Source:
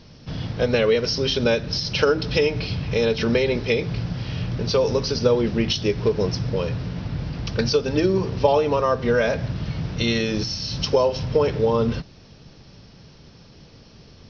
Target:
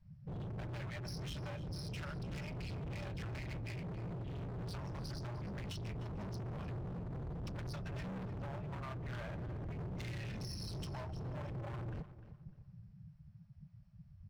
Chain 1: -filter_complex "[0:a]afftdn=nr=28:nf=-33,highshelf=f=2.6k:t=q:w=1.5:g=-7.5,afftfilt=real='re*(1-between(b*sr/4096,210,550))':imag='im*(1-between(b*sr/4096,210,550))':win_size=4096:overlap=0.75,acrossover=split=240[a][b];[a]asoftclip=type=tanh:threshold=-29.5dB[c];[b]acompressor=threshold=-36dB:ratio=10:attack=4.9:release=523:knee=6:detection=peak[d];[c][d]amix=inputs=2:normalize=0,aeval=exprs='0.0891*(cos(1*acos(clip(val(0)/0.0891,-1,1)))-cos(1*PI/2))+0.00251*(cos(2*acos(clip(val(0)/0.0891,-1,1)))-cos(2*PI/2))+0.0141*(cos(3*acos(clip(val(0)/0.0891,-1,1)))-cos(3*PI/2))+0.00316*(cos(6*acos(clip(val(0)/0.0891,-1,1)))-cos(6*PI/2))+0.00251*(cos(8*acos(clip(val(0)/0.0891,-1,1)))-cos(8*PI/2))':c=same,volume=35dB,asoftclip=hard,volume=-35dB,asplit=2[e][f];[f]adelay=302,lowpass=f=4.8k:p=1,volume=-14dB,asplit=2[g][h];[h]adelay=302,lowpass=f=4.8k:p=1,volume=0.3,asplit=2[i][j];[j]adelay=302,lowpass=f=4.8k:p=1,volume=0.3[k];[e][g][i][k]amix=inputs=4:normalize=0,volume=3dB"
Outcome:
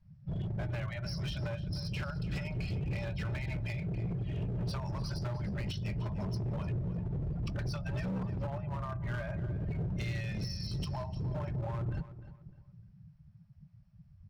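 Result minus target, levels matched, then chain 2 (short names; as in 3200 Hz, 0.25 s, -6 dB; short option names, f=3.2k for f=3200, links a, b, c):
overloaded stage: distortion -7 dB
-filter_complex "[0:a]afftdn=nr=28:nf=-33,highshelf=f=2.6k:t=q:w=1.5:g=-7.5,afftfilt=real='re*(1-between(b*sr/4096,210,550))':imag='im*(1-between(b*sr/4096,210,550))':win_size=4096:overlap=0.75,acrossover=split=240[a][b];[a]asoftclip=type=tanh:threshold=-29.5dB[c];[b]acompressor=threshold=-36dB:ratio=10:attack=4.9:release=523:knee=6:detection=peak[d];[c][d]amix=inputs=2:normalize=0,aeval=exprs='0.0891*(cos(1*acos(clip(val(0)/0.0891,-1,1)))-cos(1*PI/2))+0.00251*(cos(2*acos(clip(val(0)/0.0891,-1,1)))-cos(2*PI/2))+0.0141*(cos(3*acos(clip(val(0)/0.0891,-1,1)))-cos(3*PI/2))+0.00316*(cos(6*acos(clip(val(0)/0.0891,-1,1)))-cos(6*PI/2))+0.00251*(cos(8*acos(clip(val(0)/0.0891,-1,1)))-cos(8*PI/2))':c=same,volume=44.5dB,asoftclip=hard,volume=-44.5dB,asplit=2[e][f];[f]adelay=302,lowpass=f=4.8k:p=1,volume=-14dB,asplit=2[g][h];[h]adelay=302,lowpass=f=4.8k:p=1,volume=0.3,asplit=2[i][j];[j]adelay=302,lowpass=f=4.8k:p=1,volume=0.3[k];[e][g][i][k]amix=inputs=4:normalize=0,volume=3dB"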